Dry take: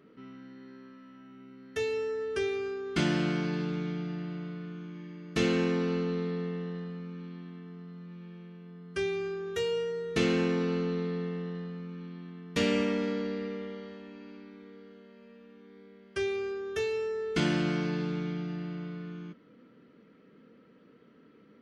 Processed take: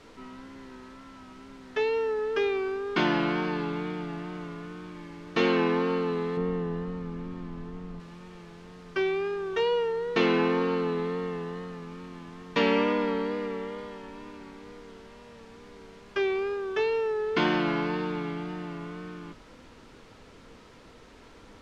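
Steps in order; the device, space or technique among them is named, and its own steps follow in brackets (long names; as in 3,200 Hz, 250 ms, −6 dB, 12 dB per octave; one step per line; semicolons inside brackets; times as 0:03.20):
horn gramophone (band-pass filter 250–4,400 Hz; parametric band 960 Hz +11.5 dB 0.41 octaves; tape wow and flutter; pink noise bed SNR 22 dB)
low-pass filter 5,000 Hz 12 dB per octave
0:06.37–0:08.00: spectral tilt −2.5 dB per octave
level +4.5 dB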